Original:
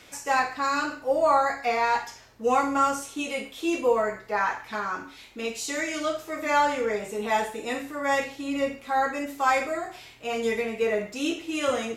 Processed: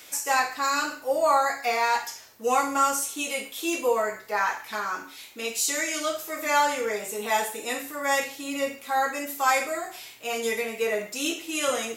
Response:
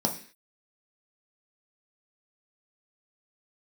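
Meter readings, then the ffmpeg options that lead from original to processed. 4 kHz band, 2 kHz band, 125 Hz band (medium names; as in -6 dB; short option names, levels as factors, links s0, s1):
+4.0 dB, +1.5 dB, no reading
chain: -af "aemphasis=mode=production:type=bsi"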